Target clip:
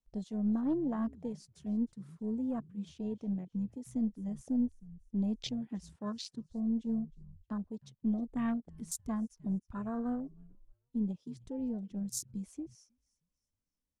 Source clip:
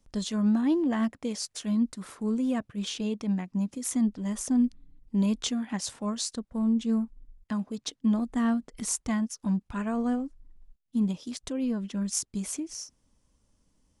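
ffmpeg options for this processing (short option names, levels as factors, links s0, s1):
-filter_complex "[0:a]aeval=exprs='0.224*(cos(1*acos(clip(val(0)/0.224,-1,1)))-cos(1*PI/2))+0.0282*(cos(2*acos(clip(val(0)/0.224,-1,1)))-cos(2*PI/2))':c=same,asplit=4[s0][s1][s2][s3];[s1]adelay=313,afreqshift=-71,volume=0.0891[s4];[s2]adelay=626,afreqshift=-142,volume=0.0347[s5];[s3]adelay=939,afreqshift=-213,volume=0.0135[s6];[s0][s4][s5][s6]amix=inputs=4:normalize=0,afwtdn=0.0178,volume=0.447"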